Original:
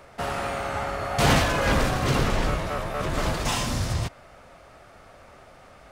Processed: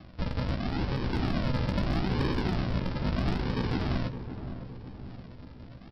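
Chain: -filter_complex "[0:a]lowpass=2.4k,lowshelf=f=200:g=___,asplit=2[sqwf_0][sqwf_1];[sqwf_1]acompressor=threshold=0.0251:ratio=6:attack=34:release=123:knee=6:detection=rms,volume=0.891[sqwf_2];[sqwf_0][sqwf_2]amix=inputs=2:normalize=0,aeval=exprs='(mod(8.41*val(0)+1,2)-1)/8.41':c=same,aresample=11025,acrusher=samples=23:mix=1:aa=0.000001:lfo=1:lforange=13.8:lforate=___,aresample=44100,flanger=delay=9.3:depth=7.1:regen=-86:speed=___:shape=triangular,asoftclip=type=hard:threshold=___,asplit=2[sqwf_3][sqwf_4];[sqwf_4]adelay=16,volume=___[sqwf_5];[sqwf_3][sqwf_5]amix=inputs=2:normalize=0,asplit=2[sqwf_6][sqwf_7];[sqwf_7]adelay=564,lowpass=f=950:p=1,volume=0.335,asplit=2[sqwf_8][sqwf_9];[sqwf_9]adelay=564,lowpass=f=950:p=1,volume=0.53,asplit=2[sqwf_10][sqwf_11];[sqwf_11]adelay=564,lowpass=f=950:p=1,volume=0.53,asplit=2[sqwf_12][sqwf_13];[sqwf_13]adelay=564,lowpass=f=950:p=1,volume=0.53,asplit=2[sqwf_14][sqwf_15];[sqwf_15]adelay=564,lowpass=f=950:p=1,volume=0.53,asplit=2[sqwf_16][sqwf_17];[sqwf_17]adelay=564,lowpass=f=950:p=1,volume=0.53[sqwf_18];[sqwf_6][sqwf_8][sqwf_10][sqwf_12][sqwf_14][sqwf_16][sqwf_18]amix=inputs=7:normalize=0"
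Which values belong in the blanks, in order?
-2.5, 0.77, 0.69, 0.075, 0.398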